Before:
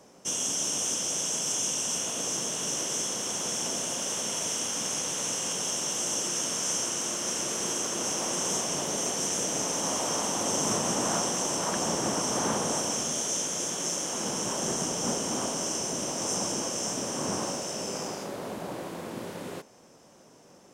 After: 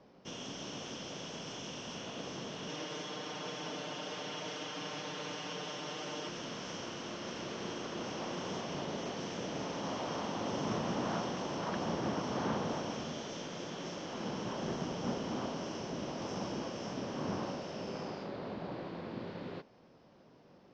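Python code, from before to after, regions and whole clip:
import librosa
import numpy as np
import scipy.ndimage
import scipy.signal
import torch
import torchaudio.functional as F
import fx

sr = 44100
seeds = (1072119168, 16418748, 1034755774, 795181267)

y = fx.chain(x, sr, fx.highpass(hz=270.0, slope=6),
    fx.high_shelf(hz=6000.0, db=-4.0),
    fx.comb(ms=6.6, depth=0.99), at=(2.68, 6.29))
y = scipy.signal.sosfilt(scipy.signal.cheby1(4, 1.0, 4600.0, 'lowpass', fs=sr, output='sos'), y)
y = fx.low_shelf(y, sr, hz=260.0, db=7.0)
y = y * librosa.db_to_amplitude(-6.5)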